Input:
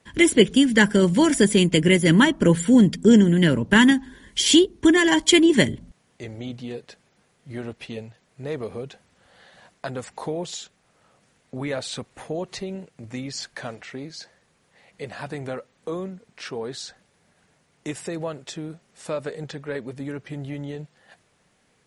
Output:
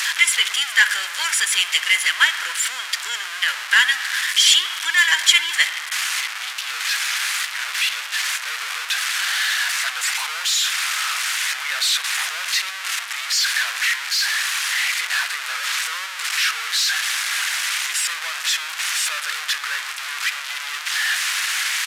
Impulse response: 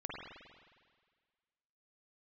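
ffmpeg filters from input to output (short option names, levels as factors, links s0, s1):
-filter_complex "[0:a]aeval=exprs='val(0)+0.5*0.141*sgn(val(0))':c=same,highpass=f=1400:w=0.5412,highpass=f=1400:w=1.3066,highshelf=f=8500:g=-9.5,acontrast=23,asplit=2[s0][s1];[1:a]atrim=start_sample=2205[s2];[s1][s2]afir=irnorm=-1:irlink=0,volume=0.376[s3];[s0][s3]amix=inputs=2:normalize=0,aresample=32000,aresample=44100,volume=0.841"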